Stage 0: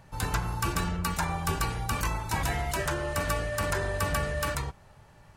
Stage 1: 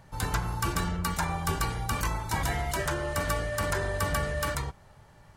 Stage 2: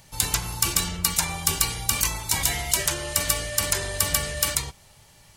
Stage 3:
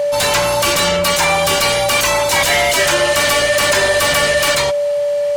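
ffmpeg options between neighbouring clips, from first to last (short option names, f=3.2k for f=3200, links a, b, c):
-af "bandreject=f=2.6k:w=17"
-af "aexciter=amount=5:drive=3.9:freq=2.2k,volume=-1.5dB"
-filter_complex "[0:a]aeval=exprs='val(0)+0.0224*sin(2*PI*580*n/s)':c=same,asplit=2[a][b];[b]highpass=f=720:p=1,volume=30dB,asoftclip=type=tanh:threshold=-1dB[c];[a][c]amix=inputs=2:normalize=0,lowpass=f=2.5k:p=1,volume=-6dB"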